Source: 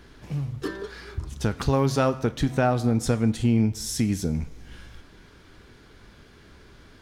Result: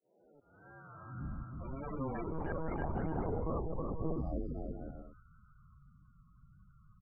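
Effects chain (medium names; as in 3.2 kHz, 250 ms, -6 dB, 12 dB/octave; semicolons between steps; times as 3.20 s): spectrogram pixelated in time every 400 ms; dynamic bell 420 Hz, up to -3 dB, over -38 dBFS, Q 1.4; integer overflow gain 23.5 dB; high-pass sweep 700 Hz -> 77 Hz, 1.03–1.70 s; vibrato 1.7 Hz 99 cents; slow attack 624 ms; loudest bins only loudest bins 16; bouncing-ball echo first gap 320 ms, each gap 0.6×, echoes 5; mistuned SSB -270 Hz 220–3000 Hz; 2.24–4.18 s: monotone LPC vocoder at 8 kHz 160 Hz; trim -3.5 dB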